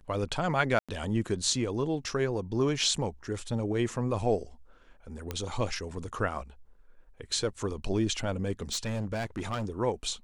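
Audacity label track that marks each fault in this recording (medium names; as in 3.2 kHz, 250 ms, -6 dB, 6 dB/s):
0.790000	0.890000	dropout 96 ms
5.310000	5.310000	pop -18 dBFS
8.610000	9.700000	clipped -28 dBFS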